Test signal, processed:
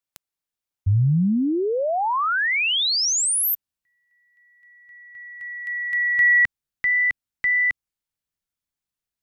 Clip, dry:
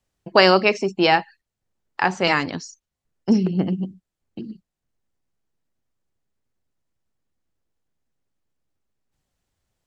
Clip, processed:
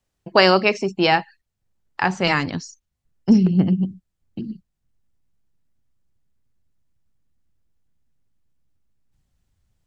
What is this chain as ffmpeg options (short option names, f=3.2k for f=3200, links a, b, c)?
-af "asubboost=boost=3:cutoff=230"